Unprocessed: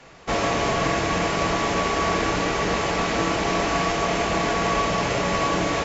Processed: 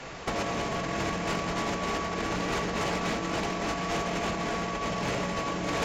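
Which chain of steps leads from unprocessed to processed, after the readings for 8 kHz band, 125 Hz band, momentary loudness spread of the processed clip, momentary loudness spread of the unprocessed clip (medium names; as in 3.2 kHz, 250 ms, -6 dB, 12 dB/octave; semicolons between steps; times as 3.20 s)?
no reading, -6.0 dB, 2 LU, 1 LU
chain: dynamic bell 200 Hz, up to +5 dB, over -43 dBFS, Q 2.3; compressor with a negative ratio -27 dBFS, ratio -0.5; hard clipper -24 dBFS, distortion -16 dB; MP3 128 kbps 44.1 kHz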